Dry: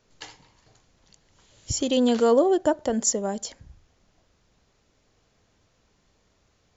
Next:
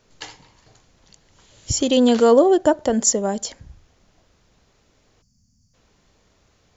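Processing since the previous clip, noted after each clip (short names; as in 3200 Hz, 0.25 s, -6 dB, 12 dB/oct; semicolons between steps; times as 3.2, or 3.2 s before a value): spectral gain 5.22–5.74, 270–4400 Hz -27 dB; gain +5.5 dB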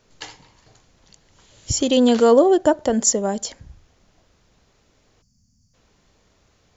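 nothing audible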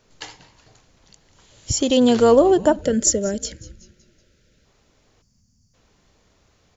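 frequency-shifting echo 0.188 s, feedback 49%, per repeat -140 Hz, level -19 dB; spectral gain 2.81–4.65, 630–1300 Hz -16 dB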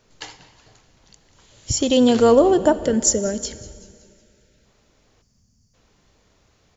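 reverb RT60 2.3 s, pre-delay 5 ms, DRR 15 dB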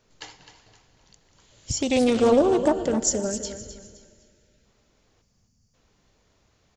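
on a send: feedback echo 0.258 s, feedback 32%, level -11 dB; on the sum: Doppler distortion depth 0.28 ms; gain -5 dB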